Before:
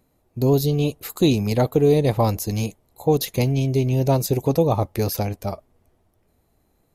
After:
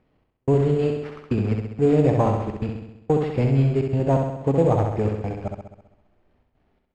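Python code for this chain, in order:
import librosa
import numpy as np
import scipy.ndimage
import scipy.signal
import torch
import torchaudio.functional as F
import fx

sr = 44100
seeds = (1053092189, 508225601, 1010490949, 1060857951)

y = fx.cvsd(x, sr, bps=32000)
y = fx.step_gate(y, sr, bpm=126, pattern='xx..xxxxxx.', floor_db=-60.0, edge_ms=4.5)
y = fx.room_flutter(y, sr, wall_m=11.3, rt60_s=0.88)
y = np.repeat(scipy.signal.resample_poly(y, 1, 6), 6)[:len(y)]
y = scipy.signal.sosfilt(scipy.signal.butter(2, 2700.0, 'lowpass', fs=sr, output='sos'), y)
y = y * librosa.db_to_amplitude(-1.0)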